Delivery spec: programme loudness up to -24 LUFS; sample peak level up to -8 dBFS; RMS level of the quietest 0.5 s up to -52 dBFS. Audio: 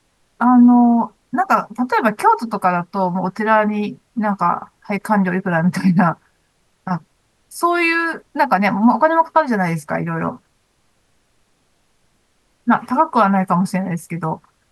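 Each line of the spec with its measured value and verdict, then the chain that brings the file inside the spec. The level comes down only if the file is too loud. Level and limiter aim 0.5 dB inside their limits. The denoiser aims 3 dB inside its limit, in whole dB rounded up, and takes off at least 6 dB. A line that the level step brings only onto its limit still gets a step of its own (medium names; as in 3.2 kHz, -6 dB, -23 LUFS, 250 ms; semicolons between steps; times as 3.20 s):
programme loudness -17.0 LUFS: fail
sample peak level -2.0 dBFS: fail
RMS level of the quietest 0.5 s -62 dBFS: pass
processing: trim -7.5 dB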